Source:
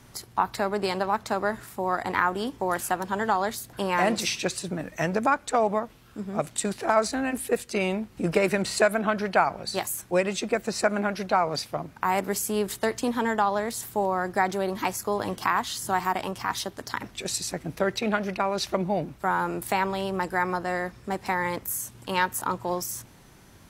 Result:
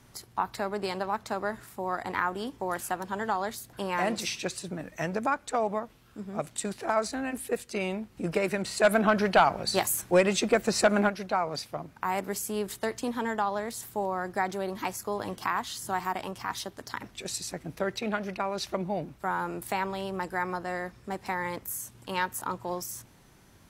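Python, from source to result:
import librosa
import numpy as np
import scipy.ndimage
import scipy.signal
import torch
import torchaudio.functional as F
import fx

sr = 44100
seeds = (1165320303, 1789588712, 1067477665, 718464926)

y = fx.fold_sine(x, sr, drive_db=4, ceiling_db=-7.0, at=(8.83, 11.08), fade=0.02)
y = y * 10.0 ** (-5.0 / 20.0)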